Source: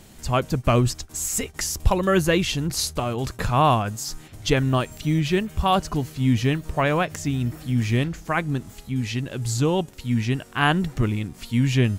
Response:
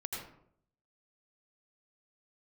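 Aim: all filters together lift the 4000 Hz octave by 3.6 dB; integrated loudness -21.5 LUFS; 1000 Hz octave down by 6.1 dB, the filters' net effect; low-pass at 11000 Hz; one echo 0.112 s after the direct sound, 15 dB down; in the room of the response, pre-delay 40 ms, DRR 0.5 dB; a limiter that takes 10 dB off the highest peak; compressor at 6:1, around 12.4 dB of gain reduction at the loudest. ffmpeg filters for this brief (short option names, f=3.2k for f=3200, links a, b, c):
-filter_complex "[0:a]lowpass=11k,equalizer=f=1k:t=o:g=-8.5,equalizer=f=4k:t=o:g=5.5,acompressor=threshold=-25dB:ratio=6,alimiter=limit=-22.5dB:level=0:latency=1,aecho=1:1:112:0.178,asplit=2[a][b];[1:a]atrim=start_sample=2205,adelay=40[c];[b][c]afir=irnorm=-1:irlink=0,volume=-1.5dB[d];[a][d]amix=inputs=2:normalize=0,volume=8dB"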